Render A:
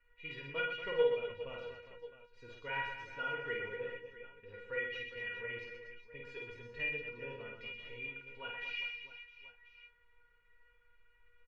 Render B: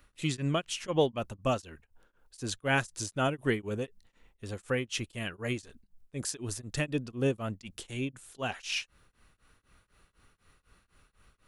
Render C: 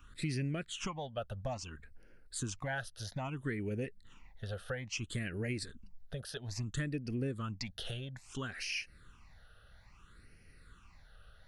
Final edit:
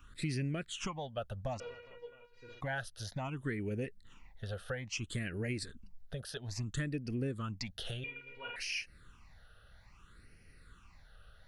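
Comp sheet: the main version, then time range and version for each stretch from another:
C
1.60–2.61 s: from A
8.04–8.56 s: from A
not used: B

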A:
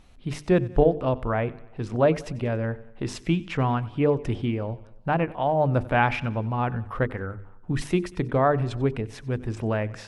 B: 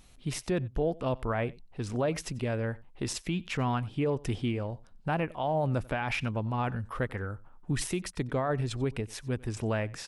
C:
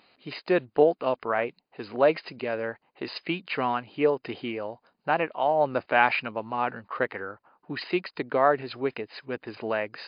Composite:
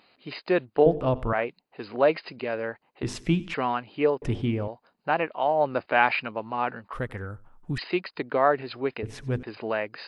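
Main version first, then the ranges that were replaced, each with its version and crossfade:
C
0.86–1.33 s: from A
3.03–3.54 s: from A
4.22–4.68 s: from A
6.93–7.78 s: from B
9.03–9.43 s: from A

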